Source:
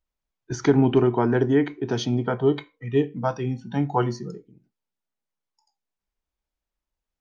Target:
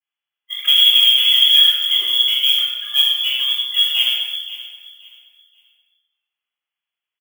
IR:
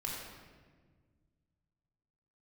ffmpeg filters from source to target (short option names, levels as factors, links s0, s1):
-filter_complex "[0:a]acrossover=split=860[s0][s1];[s1]asoftclip=type=hard:threshold=0.0224[s2];[s0][s2]amix=inputs=2:normalize=0,bandreject=f=50:t=h:w=6,bandreject=f=100:t=h:w=6,bandreject=f=150:t=h:w=6,bandreject=f=200:t=h:w=6,bandreject=f=250:t=h:w=6,bandreject=f=300:t=h:w=6,bandreject=f=350:t=h:w=6,bandreject=f=400:t=h:w=6,bandreject=f=450:t=h:w=6,asplit=2[s3][s4];[s4]aeval=exprs='0.133*(abs(mod(val(0)/0.133+3,4)-2)-1)':c=same,volume=0.708[s5];[s3][s5]amix=inputs=2:normalize=0,adynamicequalizer=threshold=0.0447:dfrequency=290:dqfactor=0.85:tfrequency=290:tqfactor=0.85:attack=5:release=100:ratio=0.375:range=1.5:mode=boostabove:tftype=bell,highpass=f=180:w=0.5412,highpass=f=180:w=1.3066,aecho=1:1:528|1056|1584:0.158|0.0412|0.0107,lowpass=f=3100:t=q:w=0.5098,lowpass=f=3100:t=q:w=0.6013,lowpass=f=3100:t=q:w=0.9,lowpass=f=3100:t=q:w=2.563,afreqshift=-3600,acrusher=bits=7:mode=log:mix=0:aa=0.000001,aemphasis=mode=production:type=riaa[s6];[1:a]atrim=start_sample=2205,afade=t=out:st=0.42:d=0.01,atrim=end_sample=18963,asetrate=43218,aresample=44100[s7];[s6][s7]afir=irnorm=-1:irlink=0,volume=0.668"